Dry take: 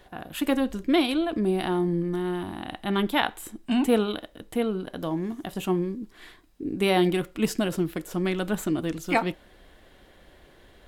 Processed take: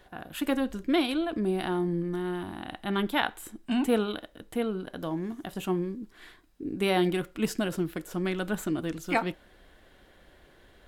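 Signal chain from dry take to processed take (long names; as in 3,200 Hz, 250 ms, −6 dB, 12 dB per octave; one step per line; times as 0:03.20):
parametric band 1,500 Hz +3.5 dB 0.37 octaves
level −3.5 dB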